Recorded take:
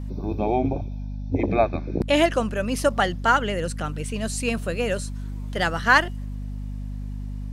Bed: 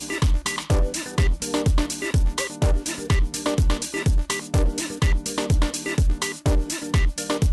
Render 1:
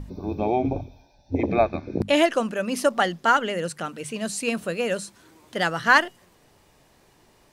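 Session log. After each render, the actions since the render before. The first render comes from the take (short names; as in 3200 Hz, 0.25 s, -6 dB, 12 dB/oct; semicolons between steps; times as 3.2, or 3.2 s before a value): notches 50/100/150/200/250 Hz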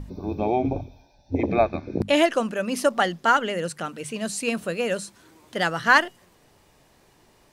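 nothing audible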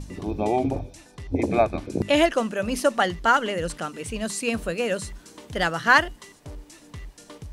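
add bed -19.5 dB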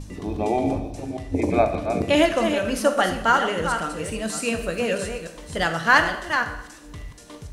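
reverse delay 0.293 s, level -7 dB; plate-style reverb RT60 0.87 s, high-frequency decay 0.9×, DRR 6.5 dB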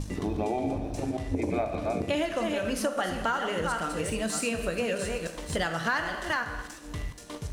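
sample leveller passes 1; compressor 5:1, threshold -27 dBFS, peak gain reduction 16 dB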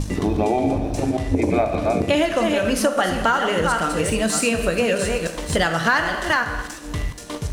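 gain +9.5 dB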